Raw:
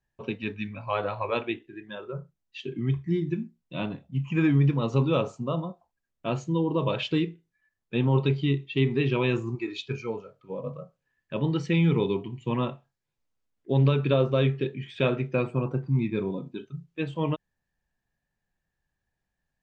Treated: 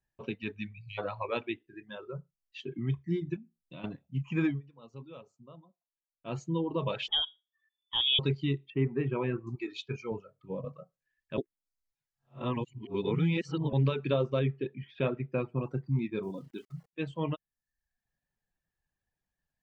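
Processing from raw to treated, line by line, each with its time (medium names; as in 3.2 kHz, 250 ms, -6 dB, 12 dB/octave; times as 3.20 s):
0.73–0.98 s: spectral selection erased 210–1800 Hz
3.36–3.84 s: compression 4:1, threshold -38 dBFS
4.46–6.38 s: dip -18 dB, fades 0.16 s
7.08–8.19 s: frequency inversion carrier 3.5 kHz
8.70–9.47 s: low-pass 2 kHz 24 dB/octave
10.11–10.65 s: peaking EQ 95 Hz +9 dB 2.9 oct
11.38–13.73 s: reverse
14.39–15.61 s: distance through air 270 m
16.23–16.93 s: small samples zeroed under -52.5 dBFS
whole clip: reverb removal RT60 0.65 s; trim -4.5 dB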